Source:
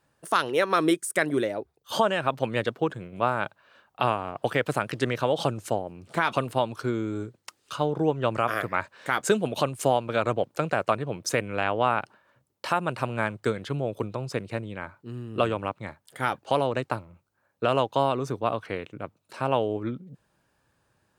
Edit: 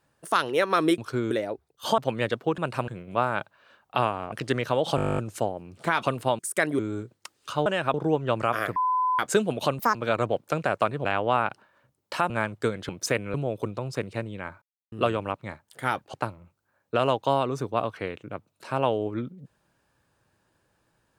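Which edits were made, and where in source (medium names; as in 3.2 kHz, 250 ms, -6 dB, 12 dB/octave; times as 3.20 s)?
0.98–1.38 s: swap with 6.69–7.02 s
2.05–2.33 s: move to 7.89 s
4.37–4.84 s: delete
5.48 s: stutter 0.02 s, 12 plays
8.71–9.14 s: bleep 1.01 kHz -21 dBFS
9.74–10.02 s: speed 176%
11.12–11.57 s: move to 13.71 s
12.82–13.12 s: move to 2.93 s
14.99–15.29 s: mute
16.51–16.83 s: delete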